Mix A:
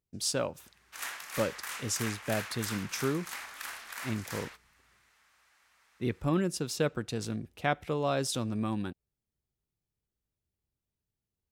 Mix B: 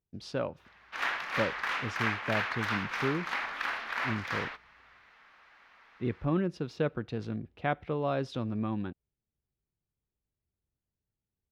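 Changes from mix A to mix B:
background +11.5 dB; master: add air absorption 300 m

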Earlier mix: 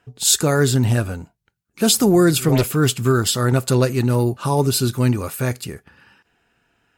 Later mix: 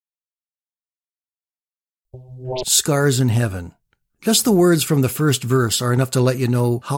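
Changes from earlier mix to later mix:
speech: entry +2.45 s; background: add Chebyshev band-stop 890–3000 Hz

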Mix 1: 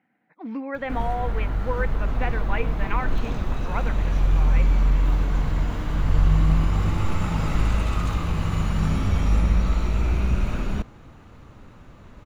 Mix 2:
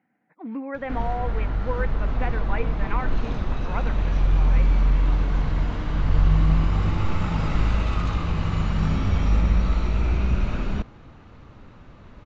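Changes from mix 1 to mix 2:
speech: add air absorption 330 m; master: add LPF 5800 Hz 24 dB/oct

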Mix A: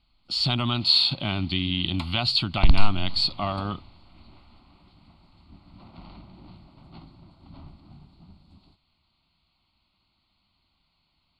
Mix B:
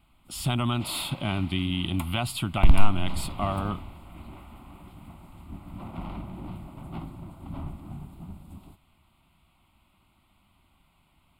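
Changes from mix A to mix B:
first sound +9.5 dB; master: remove synth low-pass 4400 Hz, resonance Q 14

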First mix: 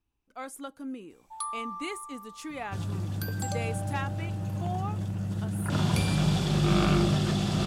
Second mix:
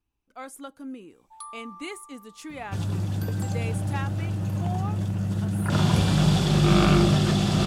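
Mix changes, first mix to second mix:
first sound -6.0 dB; second sound +5.0 dB

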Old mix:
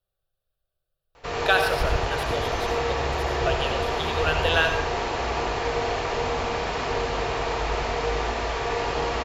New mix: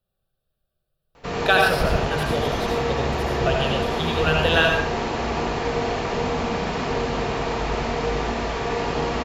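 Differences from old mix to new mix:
speech: send +7.0 dB; master: add bell 200 Hz +13.5 dB 0.97 oct

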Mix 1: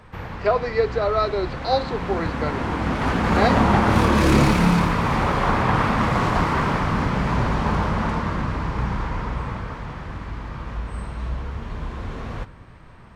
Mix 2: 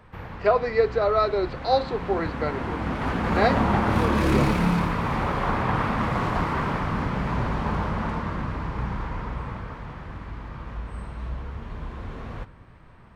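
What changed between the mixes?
background -4.5 dB; master: add bell 6600 Hz -5 dB 1.5 oct

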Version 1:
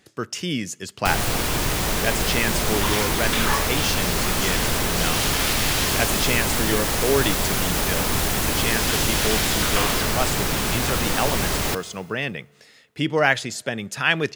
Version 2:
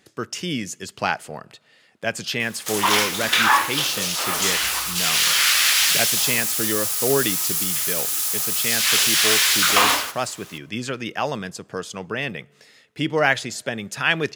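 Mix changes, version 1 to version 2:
first sound: muted; second sound +8.5 dB; master: add low shelf 74 Hz -6.5 dB

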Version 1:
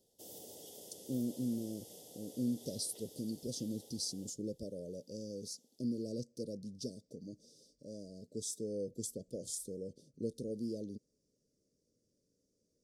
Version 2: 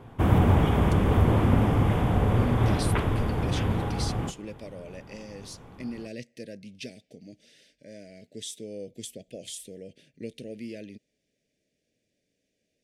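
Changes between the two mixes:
background: remove resonant high-pass 1900 Hz, resonance Q 3.4; master: remove elliptic band-stop 510–5000 Hz, stop band 50 dB

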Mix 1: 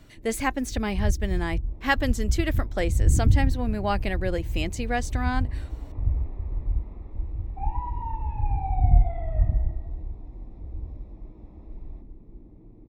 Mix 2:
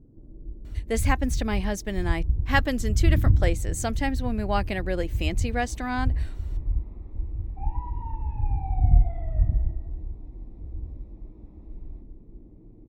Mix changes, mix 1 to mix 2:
speech: entry +0.65 s; second sound -6.0 dB

